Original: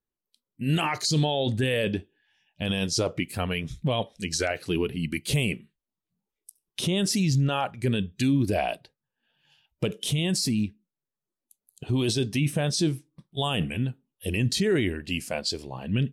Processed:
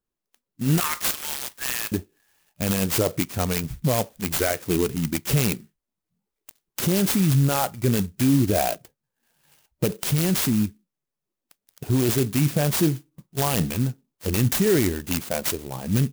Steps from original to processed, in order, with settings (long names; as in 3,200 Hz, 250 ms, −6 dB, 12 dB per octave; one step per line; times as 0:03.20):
0:00.80–0:01.92: Butterworth high-pass 970 Hz 96 dB per octave
converter with an unsteady clock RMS 0.089 ms
level +4 dB